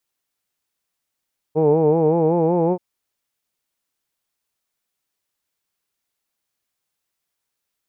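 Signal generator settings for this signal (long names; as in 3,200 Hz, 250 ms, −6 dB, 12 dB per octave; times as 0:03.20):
vowel from formants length 1.23 s, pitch 151 Hz, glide +2.5 semitones, F1 440 Hz, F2 860 Hz, F3 2,400 Hz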